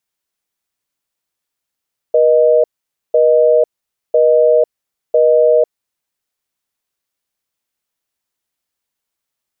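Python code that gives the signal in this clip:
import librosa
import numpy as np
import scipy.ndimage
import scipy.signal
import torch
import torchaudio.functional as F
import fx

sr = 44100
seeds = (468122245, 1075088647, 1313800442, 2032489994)

y = fx.call_progress(sr, length_s=3.71, kind='busy tone', level_db=-10.0)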